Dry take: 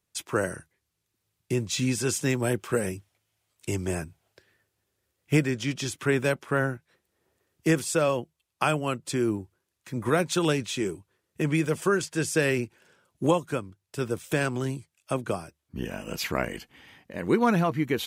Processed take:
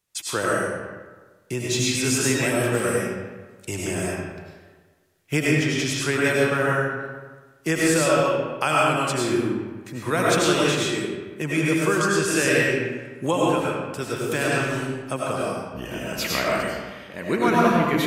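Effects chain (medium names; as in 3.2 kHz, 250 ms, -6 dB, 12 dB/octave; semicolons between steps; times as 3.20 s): tilt shelf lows -3 dB, about 800 Hz; reverberation RT60 1.4 s, pre-delay 60 ms, DRR -5 dB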